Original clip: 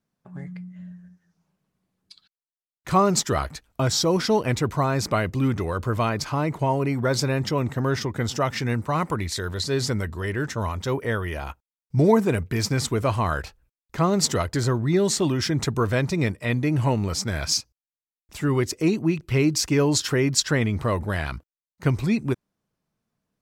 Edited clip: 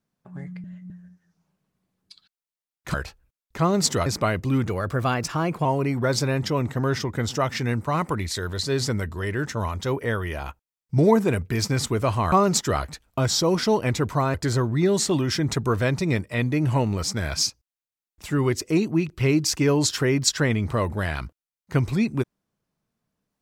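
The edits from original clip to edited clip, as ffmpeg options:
-filter_complex "[0:a]asplit=9[a][b][c][d][e][f][g][h][i];[a]atrim=end=0.642[j];[b]atrim=start=0.638:end=0.902,asetpts=PTS-STARTPTS,areverse[k];[c]atrim=start=0.898:end=2.942[l];[d]atrim=start=13.328:end=14.452[m];[e]atrim=start=4.958:end=5.564[n];[f]atrim=start=5.56:end=6.66,asetpts=PTS-STARTPTS,asetrate=48951,aresample=44100[o];[g]atrim=start=6.656:end=13.332[p];[h]atrim=start=2.938:end=4.962[q];[i]atrim=start=14.448[r];[j][k]acrossfade=d=0.004:c1=hsin:c2=hsin[s];[s][l]acrossfade=d=0.004:c1=hsin:c2=hsin[t];[t][m]acrossfade=d=0.004:c1=hsin:c2=hsin[u];[u][n]acrossfade=d=0.004:c1=hsin:c2=hsin[v];[v][o]acrossfade=d=0.004:c1=hsin:c2=hsin[w];[w][p]acrossfade=d=0.004:c1=hsin:c2=hsin[x];[x][q]acrossfade=d=0.004:c1=hsin:c2=hsin[y];[y][r]acrossfade=d=0.004:c1=hsin:c2=hsin"

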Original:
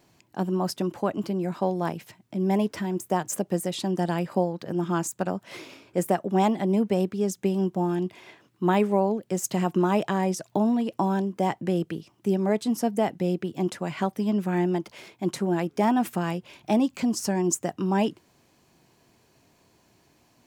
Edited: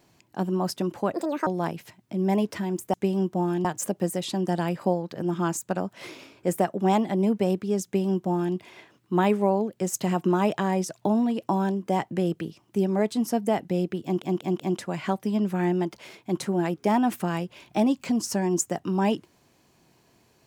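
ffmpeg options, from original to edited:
-filter_complex "[0:a]asplit=8[a][b][c][d][e][f][g][h];[a]atrim=end=1.144[i];[b]atrim=start=1.14:end=1.68,asetpts=PTS-STARTPTS,asetrate=72765,aresample=44100[j];[c]atrim=start=1.676:end=3.152[k];[d]atrim=start=7.348:end=8.062[l];[e]atrim=start=3.148:end=13.722[m];[f]atrim=start=13.528:end=13.722[n];[g]atrim=start=13.528:end=13.722[o];[h]atrim=start=13.528[p];[i][j]acrossfade=d=0.004:c1=hsin:c2=hsin[q];[q][k]acrossfade=d=0.004:c1=hsin:c2=hsin[r];[r][l]acrossfade=d=0.004:c1=hsin:c2=hsin[s];[s][m]acrossfade=d=0.004:c1=hsin:c2=hsin[t];[t][n]acrossfade=d=0.004:c1=hsin:c2=hsin[u];[u][o]acrossfade=d=0.004:c1=hsin:c2=hsin[v];[v][p]acrossfade=d=0.004:c1=hsin:c2=hsin"

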